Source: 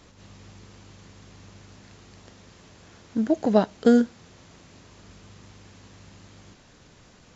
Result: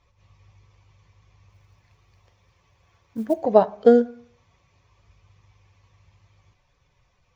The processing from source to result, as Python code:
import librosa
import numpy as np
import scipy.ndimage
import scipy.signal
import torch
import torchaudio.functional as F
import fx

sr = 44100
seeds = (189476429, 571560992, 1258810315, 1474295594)

y = fx.bin_expand(x, sr, power=1.5)
y = scipy.signal.sosfilt(scipy.signal.butter(2, 4300.0, 'lowpass', fs=sr, output='sos'), y)
y = fx.band_shelf(y, sr, hz=700.0, db=10.0, octaves=1.7)
y = fx.quant_float(y, sr, bits=4, at=(1.49, 3.33), fade=0.02)
y = fx.rev_plate(y, sr, seeds[0], rt60_s=0.56, hf_ratio=0.5, predelay_ms=0, drr_db=14.5)
y = y * 10.0 ** (-2.5 / 20.0)